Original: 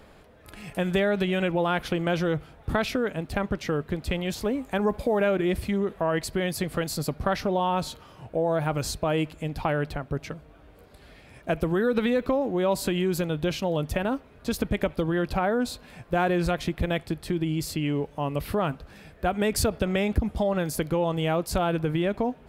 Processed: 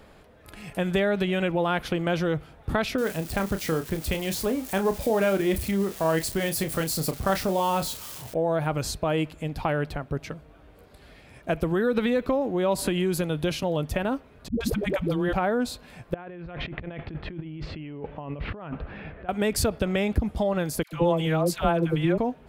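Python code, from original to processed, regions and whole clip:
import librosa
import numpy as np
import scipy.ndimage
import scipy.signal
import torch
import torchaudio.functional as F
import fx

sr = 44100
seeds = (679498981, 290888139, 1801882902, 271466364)

y = fx.chain(x, sr, fx.crossing_spikes(level_db=-28.5),
    fx.doubler(ms=31.0, db=-9.0), at=(2.98, 8.34))
y = fx.chain(y, sr, fx.peak_eq(hz=10000.0, db=8.0, octaves=0.22),
    fx.band_squash(depth_pct=40), at=(12.78, 13.63))
y = fx.chain(y, sr, fx.dispersion(late='highs', ms=127.0, hz=300.0),
    fx.band_squash(depth_pct=40), at=(14.48, 15.33))
y = fx.chain(y, sr, fx.block_float(bits=7),
    fx.lowpass(hz=2800.0, slope=24),
    fx.over_compress(threshold_db=-36.0, ratio=-1.0), at=(16.14, 19.29))
y = fx.chain(y, sr, fx.comb(ms=5.8, depth=0.39),
    fx.dispersion(late='lows', ms=99.0, hz=870.0), at=(20.83, 22.18))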